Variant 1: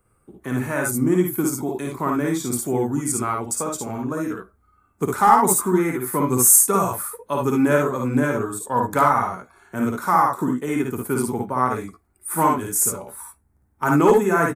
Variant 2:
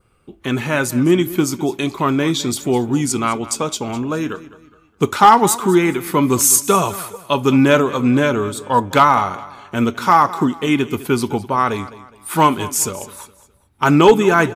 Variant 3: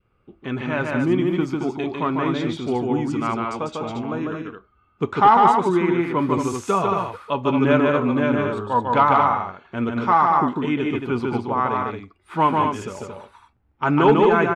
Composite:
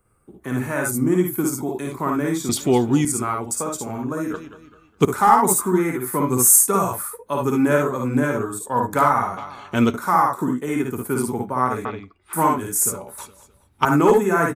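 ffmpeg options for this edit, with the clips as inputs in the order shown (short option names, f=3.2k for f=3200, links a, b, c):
-filter_complex "[1:a]asplit=4[a][b][c][d];[0:a]asplit=6[e][f][g][h][i][j];[e]atrim=end=2.492[k];[a]atrim=start=2.488:end=3.052[l];[f]atrim=start=3.048:end=4.342[m];[b]atrim=start=4.338:end=5.052[n];[g]atrim=start=5.048:end=9.372[o];[c]atrim=start=9.368:end=9.942[p];[h]atrim=start=9.938:end=11.852[q];[2:a]atrim=start=11.848:end=12.332[r];[i]atrim=start=12.328:end=13.182[s];[d]atrim=start=13.178:end=13.852[t];[j]atrim=start=13.848[u];[k][l]acrossfade=d=0.004:c1=hsin:c2=hsin[v];[v][m]acrossfade=d=0.004:c1=hsin:c2=hsin[w];[w][n]acrossfade=d=0.004:c1=hsin:c2=hsin[x];[x][o]acrossfade=d=0.004:c1=hsin:c2=hsin[y];[y][p]acrossfade=d=0.004:c1=hsin:c2=hsin[z];[z][q]acrossfade=d=0.004:c1=hsin:c2=hsin[aa];[aa][r]acrossfade=d=0.004:c1=hsin:c2=hsin[ab];[ab][s]acrossfade=d=0.004:c1=hsin:c2=hsin[ac];[ac][t]acrossfade=d=0.004:c1=hsin:c2=hsin[ad];[ad][u]acrossfade=d=0.004:c1=hsin:c2=hsin"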